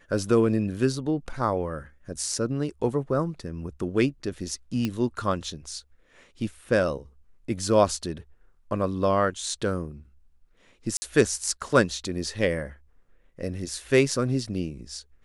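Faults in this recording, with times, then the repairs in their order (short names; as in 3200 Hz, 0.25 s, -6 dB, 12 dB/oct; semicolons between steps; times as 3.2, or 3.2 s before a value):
4.85 pop -14 dBFS
10.97–11.02 gap 50 ms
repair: de-click; interpolate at 10.97, 50 ms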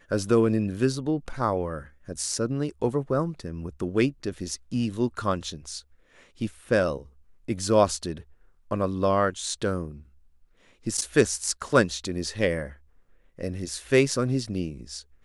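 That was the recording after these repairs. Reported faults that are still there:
none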